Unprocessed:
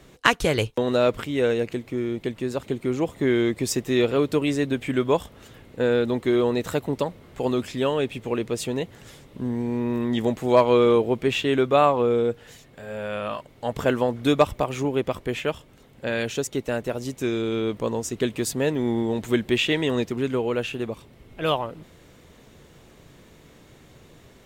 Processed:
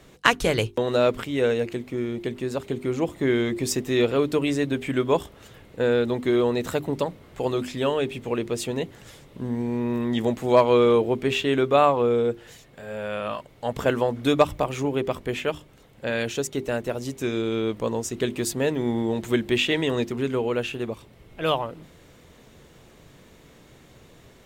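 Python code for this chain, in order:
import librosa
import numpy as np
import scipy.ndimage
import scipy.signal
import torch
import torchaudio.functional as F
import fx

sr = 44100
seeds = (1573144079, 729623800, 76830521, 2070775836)

y = fx.hum_notches(x, sr, base_hz=50, count=8)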